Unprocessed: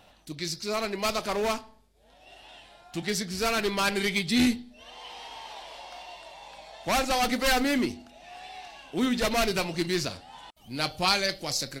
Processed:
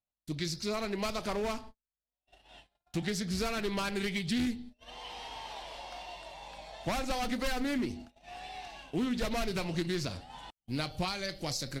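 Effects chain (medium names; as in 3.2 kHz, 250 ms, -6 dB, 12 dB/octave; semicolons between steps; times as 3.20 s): compression 12:1, threshold -30 dBFS, peak gain reduction 12.5 dB; gate -48 dBFS, range -44 dB; bass shelf 210 Hz +9 dB; loudspeaker Doppler distortion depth 0.15 ms; trim -1.5 dB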